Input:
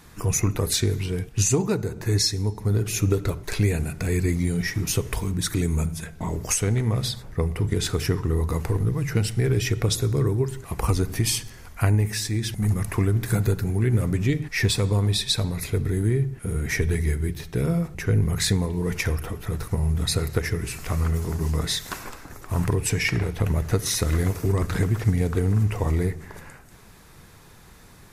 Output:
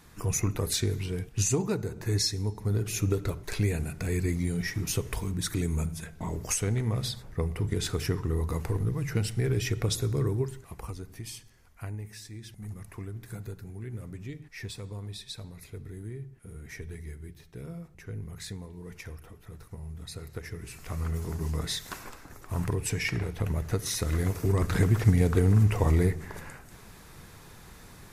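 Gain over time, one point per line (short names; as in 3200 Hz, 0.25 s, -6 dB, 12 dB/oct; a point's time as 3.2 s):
10.41 s -5.5 dB
10.94 s -17.5 dB
20.1 s -17.5 dB
21.22 s -6.5 dB
23.99 s -6.5 dB
24.95 s 0 dB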